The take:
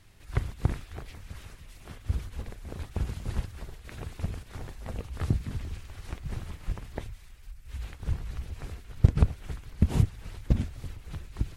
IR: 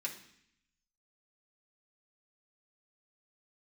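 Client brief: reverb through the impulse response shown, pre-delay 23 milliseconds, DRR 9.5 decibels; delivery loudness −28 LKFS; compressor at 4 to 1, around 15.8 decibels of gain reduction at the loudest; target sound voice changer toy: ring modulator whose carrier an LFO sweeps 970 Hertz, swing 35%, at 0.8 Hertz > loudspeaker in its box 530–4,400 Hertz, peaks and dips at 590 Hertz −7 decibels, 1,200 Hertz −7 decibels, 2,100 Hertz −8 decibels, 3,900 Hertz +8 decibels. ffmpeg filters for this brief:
-filter_complex "[0:a]acompressor=threshold=-33dB:ratio=4,asplit=2[link_01][link_02];[1:a]atrim=start_sample=2205,adelay=23[link_03];[link_02][link_03]afir=irnorm=-1:irlink=0,volume=-10dB[link_04];[link_01][link_04]amix=inputs=2:normalize=0,aeval=exprs='val(0)*sin(2*PI*970*n/s+970*0.35/0.8*sin(2*PI*0.8*n/s))':channel_layout=same,highpass=530,equalizer=frequency=590:width_type=q:width=4:gain=-7,equalizer=frequency=1200:width_type=q:width=4:gain=-7,equalizer=frequency=2100:width_type=q:width=4:gain=-8,equalizer=frequency=3900:width_type=q:width=4:gain=8,lowpass=frequency=4400:width=0.5412,lowpass=frequency=4400:width=1.3066,volume=18dB"

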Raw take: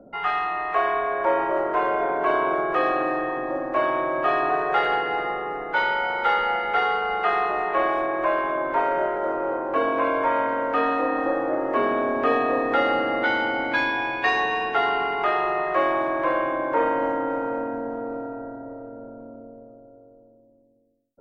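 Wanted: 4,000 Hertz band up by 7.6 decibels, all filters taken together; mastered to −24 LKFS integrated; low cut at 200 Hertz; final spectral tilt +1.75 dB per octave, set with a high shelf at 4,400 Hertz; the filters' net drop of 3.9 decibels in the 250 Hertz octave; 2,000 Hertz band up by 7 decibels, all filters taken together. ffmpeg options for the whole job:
ffmpeg -i in.wav -af "highpass=200,equalizer=frequency=250:width_type=o:gain=-4.5,equalizer=frequency=2000:width_type=o:gain=7,equalizer=frequency=4000:width_type=o:gain=5.5,highshelf=frequency=4400:gain=4,volume=-4dB" out.wav

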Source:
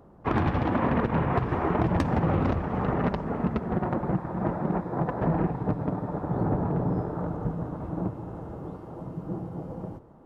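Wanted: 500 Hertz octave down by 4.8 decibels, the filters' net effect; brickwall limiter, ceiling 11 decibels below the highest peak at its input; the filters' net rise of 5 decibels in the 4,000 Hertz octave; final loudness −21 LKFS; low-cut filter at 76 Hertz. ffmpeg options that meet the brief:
ffmpeg -i in.wav -af "highpass=76,equalizer=frequency=500:width_type=o:gain=-6.5,equalizer=frequency=4000:width_type=o:gain=7,volume=11dB,alimiter=limit=-9.5dB:level=0:latency=1" out.wav

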